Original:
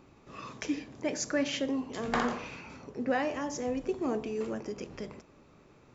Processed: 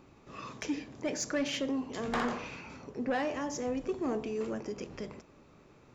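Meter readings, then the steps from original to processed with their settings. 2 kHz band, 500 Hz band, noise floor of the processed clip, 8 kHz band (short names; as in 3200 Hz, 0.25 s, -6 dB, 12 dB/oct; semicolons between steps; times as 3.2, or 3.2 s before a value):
-2.0 dB, -1.5 dB, -59 dBFS, n/a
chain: soft clip -24 dBFS, distortion -17 dB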